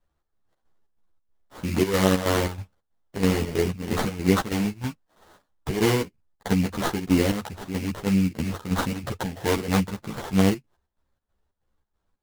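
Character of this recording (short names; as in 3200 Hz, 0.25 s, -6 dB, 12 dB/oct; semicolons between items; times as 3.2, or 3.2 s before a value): aliases and images of a low sample rate 2500 Hz, jitter 20%; chopped level 3.1 Hz, depth 65%, duty 65%; a shimmering, thickened sound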